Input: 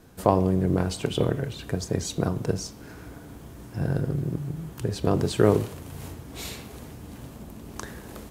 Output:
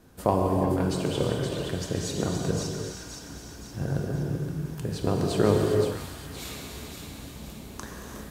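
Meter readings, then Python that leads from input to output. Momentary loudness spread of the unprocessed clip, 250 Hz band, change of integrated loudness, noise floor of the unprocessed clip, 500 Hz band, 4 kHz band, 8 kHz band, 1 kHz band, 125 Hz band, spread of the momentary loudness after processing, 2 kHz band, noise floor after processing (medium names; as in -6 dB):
20 LU, -1.0 dB, -1.5 dB, -44 dBFS, -0.5 dB, +0.5 dB, +0.5 dB, -0.5 dB, -1.5 dB, 16 LU, 0.0 dB, -43 dBFS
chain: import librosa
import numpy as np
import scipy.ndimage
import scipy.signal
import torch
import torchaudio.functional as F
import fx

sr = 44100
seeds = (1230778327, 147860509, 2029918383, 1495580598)

y = fx.echo_wet_highpass(x, sr, ms=520, feedback_pct=49, hz=1700.0, wet_db=-5.0)
y = fx.rev_gated(y, sr, seeds[0], gate_ms=430, shape='flat', drr_db=0.5)
y = y * librosa.db_to_amplitude(-3.5)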